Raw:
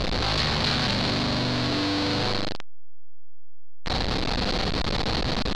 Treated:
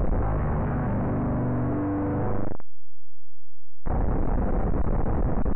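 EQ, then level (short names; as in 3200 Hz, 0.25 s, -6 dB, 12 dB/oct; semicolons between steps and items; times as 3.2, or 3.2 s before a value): Gaussian blur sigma 6.8 samples; low shelf 79 Hz +7.5 dB; 0.0 dB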